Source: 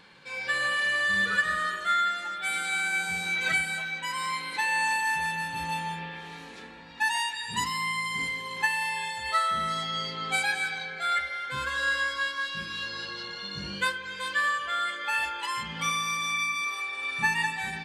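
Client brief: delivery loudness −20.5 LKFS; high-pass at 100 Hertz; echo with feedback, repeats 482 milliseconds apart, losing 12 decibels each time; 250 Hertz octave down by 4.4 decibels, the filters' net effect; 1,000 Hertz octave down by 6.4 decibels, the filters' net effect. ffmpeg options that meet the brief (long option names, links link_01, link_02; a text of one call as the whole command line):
ffmpeg -i in.wav -af "highpass=100,equalizer=frequency=250:width_type=o:gain=-6.5,equalizer=frequency=1000:width_type=o:gain=-8.5,aecho=1:1:482|964|1446:0.251|0.0628|0.0157,volume=9.5dB" out.wav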